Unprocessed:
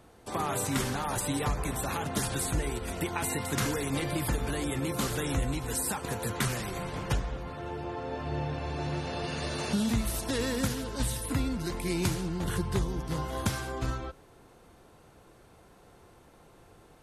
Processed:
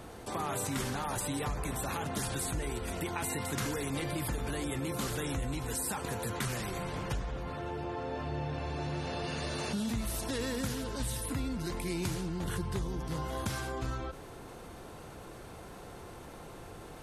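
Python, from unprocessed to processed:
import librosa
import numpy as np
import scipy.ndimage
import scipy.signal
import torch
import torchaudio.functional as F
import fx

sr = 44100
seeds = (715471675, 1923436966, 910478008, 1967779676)

y = fx.env_flatten(x, sr, amount_pct=50)
y = y * 10.0 ** (-7.0 / 20.0)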